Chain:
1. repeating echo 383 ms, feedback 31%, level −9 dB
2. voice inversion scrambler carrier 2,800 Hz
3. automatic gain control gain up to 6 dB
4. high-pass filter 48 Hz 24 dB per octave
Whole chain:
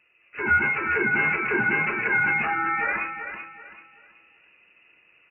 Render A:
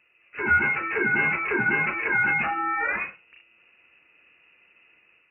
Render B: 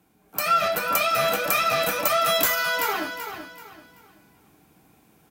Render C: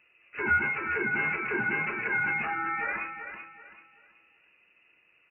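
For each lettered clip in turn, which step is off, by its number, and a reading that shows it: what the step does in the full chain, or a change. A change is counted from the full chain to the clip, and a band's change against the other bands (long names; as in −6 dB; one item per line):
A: 1, change in momentary loudness spread −5 LU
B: 2, 500 Hz band +12.0 dB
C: 3, change in crest factor +1.5 dB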